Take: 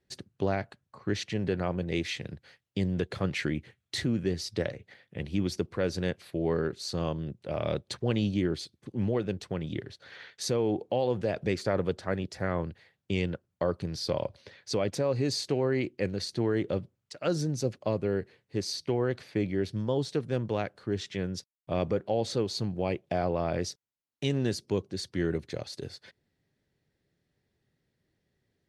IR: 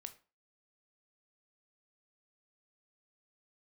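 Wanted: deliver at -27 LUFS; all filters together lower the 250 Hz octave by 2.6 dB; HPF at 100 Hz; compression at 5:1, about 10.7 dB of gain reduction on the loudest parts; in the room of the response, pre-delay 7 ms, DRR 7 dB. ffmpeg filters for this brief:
-filter_complex "[0:a]highpass=100,equalizer=f=250:t=o:g=-3.5,acompressor=threshold=0.0141:ratio=5,asplit=2[s0][s1];[1:a]atrim=start_sample=2205,adelay=7[s2];[s1][s2]afir=irnorm=-1:irlink=0,volume=0.841[s3];[s0][s3]amix=inputs=2:normalize=0,volume=5.01"

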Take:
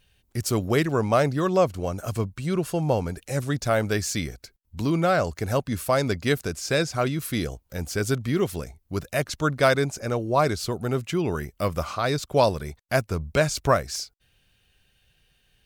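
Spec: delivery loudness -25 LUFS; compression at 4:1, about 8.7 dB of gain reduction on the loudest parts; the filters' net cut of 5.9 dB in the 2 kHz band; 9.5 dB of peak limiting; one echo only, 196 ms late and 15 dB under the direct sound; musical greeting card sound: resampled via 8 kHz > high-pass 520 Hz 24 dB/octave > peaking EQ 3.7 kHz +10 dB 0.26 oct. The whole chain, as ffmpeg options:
-af "equalizer=f=2000:t=o:g=-8.5,acompressor=threshold=0.0501:ratio=4,alimiter=level_in=1.12:limit=0.0631:level=0:latency=1,volume=0.891,aecho=1:1:196:0.178,aresample=8000,aresample=44100,highpass=f=520:w=0.5412,highpass=f=520:w=1.3066,equalizer=f=3700:t=o:w=0.26:g=10,volume=6.31"

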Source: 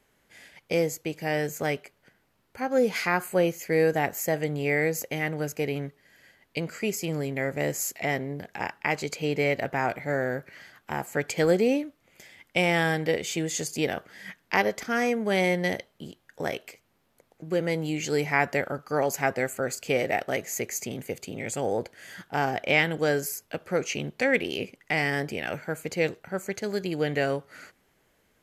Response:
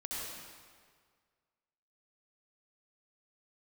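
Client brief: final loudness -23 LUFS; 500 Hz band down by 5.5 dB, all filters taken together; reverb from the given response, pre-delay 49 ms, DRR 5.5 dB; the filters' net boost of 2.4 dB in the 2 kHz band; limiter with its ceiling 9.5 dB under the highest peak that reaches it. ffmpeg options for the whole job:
-filter_complex "[0:a]equalizer=f=500:t=o:g=-6.5,equalizer=f=2000:t=o:g=3,alimiter=limit=0.15:level=0:latency=1,asplit=2[s0][s1];[1:a]atrim=start_sample=2205,adelay=49[s2];[s1][s2]afir=irnorm=-1:irlink=0,volume=0.422[s3];[s0][s3]amix=inputs=2:normalize=0,volume=2.11"

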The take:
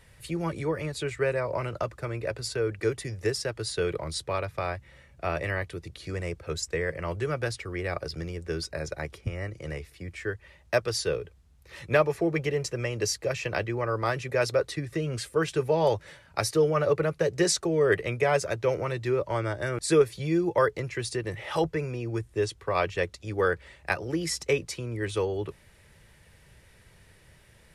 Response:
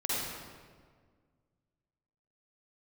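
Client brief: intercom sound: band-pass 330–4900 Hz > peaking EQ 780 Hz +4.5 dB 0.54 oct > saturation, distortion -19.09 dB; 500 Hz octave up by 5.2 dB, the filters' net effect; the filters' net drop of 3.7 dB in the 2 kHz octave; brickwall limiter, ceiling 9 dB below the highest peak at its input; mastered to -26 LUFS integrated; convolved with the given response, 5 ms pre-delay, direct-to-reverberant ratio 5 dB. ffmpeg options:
-filter_complex "[0:a]equalizer=f=500:t=o:g=6.5,equalizer=f=2000:t=o:g=-5.5,alimiter=limit=0.2:level=0:latency=1,asplit=2[s0][s1];[1:a]atrim=start_sample=2205,adelay=5[s2];[s1][s2]afir=irnorm=-1:irlink=0,volume=0.237[s3];[s0][s3]amix=inputs=2:normalize=0,highpass=330,lowpass=4900,equalizer=f=780:t=o:w=0.54:g=4.5,asoftclip=threshold=0.178,volume=1.19"

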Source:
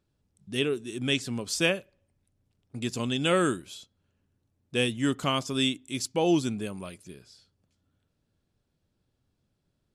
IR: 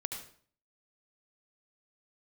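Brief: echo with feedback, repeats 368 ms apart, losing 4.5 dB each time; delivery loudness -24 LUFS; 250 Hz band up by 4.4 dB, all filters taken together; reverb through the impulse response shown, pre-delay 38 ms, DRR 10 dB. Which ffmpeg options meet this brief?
-filter_complex "[0:a]equalizer=f=250:t=o:g=5.5,aecho=1:1:368|736|1104|1472|1840|2208|2576|2944|3312:0.596|0.357|0.214|0.129|0.0772|0.0463|0.0278|0.0167|0.01,asplit=2[s0][s1];[1:a]atrim=start_sample=2205,adelay=38[s2];[s1][s2]afir=irnorm=-1:irlink=0,volume=0.282[s3];[s0][s3]amix=inputs=2:normalize=0,volume=1.19"

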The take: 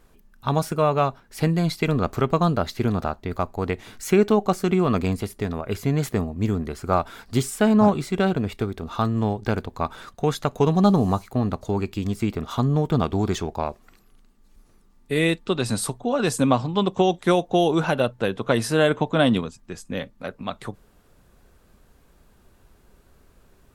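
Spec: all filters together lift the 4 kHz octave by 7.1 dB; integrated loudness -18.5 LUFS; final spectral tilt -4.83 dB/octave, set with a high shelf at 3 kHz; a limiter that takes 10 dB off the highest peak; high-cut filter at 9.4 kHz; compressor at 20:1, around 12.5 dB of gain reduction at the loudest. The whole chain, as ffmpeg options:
-af "lowpass=9400,highshelf=f=3000:g=4.5,equalizer=f=4000:t=o:g=5.5,acompressor=threshold=0.0562:ratio=20,volume=5.62,alimiter=limit=0.447:level=0:latency=1"

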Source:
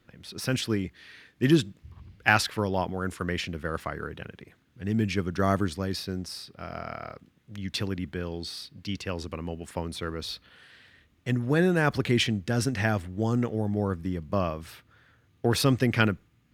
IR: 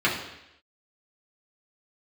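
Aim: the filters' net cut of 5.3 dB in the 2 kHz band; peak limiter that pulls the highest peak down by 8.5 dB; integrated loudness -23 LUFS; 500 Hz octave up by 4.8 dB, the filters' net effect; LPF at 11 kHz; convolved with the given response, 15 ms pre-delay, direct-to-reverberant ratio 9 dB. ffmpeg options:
-filter_complex "[0:a]lowpass=11000,equalizer=f=500:t=o:g=6.5,equalizer=f=2000:t=o:g=-8,alimiter=limit=0.178:level=0:latency=1,asplit=2[s0][s1];[1:a]atrim=start_sample=2205,adelay=15[s2];[s1][s2]afir=irnorm=-1:irlink=0,volume=0.0562[s3];[s0][s3]amix=inputs=2:normalize=0,volume=2"

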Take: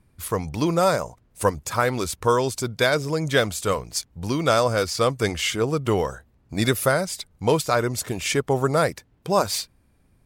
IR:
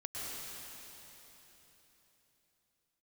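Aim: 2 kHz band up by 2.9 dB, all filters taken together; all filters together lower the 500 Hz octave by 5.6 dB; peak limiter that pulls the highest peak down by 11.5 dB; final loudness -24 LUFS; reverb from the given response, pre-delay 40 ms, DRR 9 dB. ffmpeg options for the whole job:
-filter_complex "[0:a]equalizer=f=500:t=o:g=-7,equalizer=f=2000:t=o:g=4.5,alimiter=limit=0.133:level=0:latency=1,asplit=2[s0][s1];[1:a]atrim=start_sample=2205,adelay=40[s2];[s1][s2]afir=irnorm=-1:irlink=0,volume=0.282[s3];[s0][s3]amix=inputs=2:normalize=0,volume=1.68"

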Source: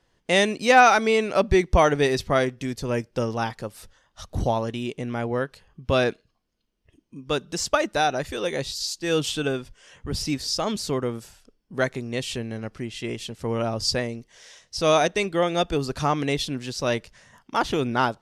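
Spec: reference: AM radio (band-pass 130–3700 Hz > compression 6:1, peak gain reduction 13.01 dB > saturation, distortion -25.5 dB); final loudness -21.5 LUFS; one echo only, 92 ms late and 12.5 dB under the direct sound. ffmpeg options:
-af "highpass=130,lowpass=3700,aecho=1:1:92:0.237,acompressor=threshold=0.0708:ratio=6,asoftclip=threshold=0.188,volume=2.66"

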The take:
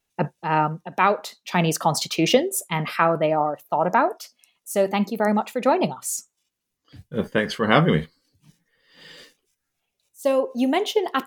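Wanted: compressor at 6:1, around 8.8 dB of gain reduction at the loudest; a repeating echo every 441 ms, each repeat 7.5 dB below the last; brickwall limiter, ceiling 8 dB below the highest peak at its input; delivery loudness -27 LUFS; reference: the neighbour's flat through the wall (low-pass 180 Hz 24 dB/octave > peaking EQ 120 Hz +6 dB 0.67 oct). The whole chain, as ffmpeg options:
-af "acompressor=threshold=0.1:ratio=6,alimiter=limit=0.178:level=0:latency=1,lowpass=f=180:w=0.5412,lowpass=f=180:w=1.3066,equalizer=f=120:t=o:w=0.67:g=6,aecho=1:1:441|882|1323|1764|2205:0.422|0.177|0.0744|0.0312|0.0131,volume=2.99"

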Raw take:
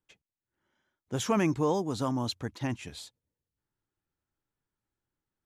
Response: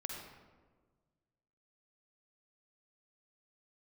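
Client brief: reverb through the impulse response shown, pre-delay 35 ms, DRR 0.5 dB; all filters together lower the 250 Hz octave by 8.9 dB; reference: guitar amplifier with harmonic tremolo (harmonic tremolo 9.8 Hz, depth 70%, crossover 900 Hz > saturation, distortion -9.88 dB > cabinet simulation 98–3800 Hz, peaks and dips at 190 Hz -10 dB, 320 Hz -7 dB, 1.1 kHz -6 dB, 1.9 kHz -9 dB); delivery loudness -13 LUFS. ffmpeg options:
-filter_complex "[0:a]equalizer=f=250:t=o:g=-4.5,asplit=2[s0][s1];[1:a]atrim=start_sample=2205,adelay=35[s2];[s1][s2]afir=irnorm=-1:irlink=0,volume=1[s3];[s0][s3]amix=inputs=2:normalize=0,acrossover=split=900[s4][s5];[s4]aeval=exprs='val(0)*(1-0.7/2+0.7/2*cos(2*PI*9.8*n/s))':c=same[s6];[s5]aeval=exprs='val(0)*(1-0.7/2-0.7/2*cos(2*PI*9.8*n/s))':c=same[s7];[s6][s7]amix=inputs=2:normalize=0,asoftclip=threshold=0.0335,highpass=98,equalizer=f=190:t=q:w=4:g=-10,equalizer=f=320:t=q:w=4:g=-7,equalizer=f=1100:t=q:w=4:g=-6,equalizer=f=1900:t=q:w=4:g=-9,lowpass=f=3800:w=0.5412,lowpass=f=3800:w=1.3066,volume=22.4"

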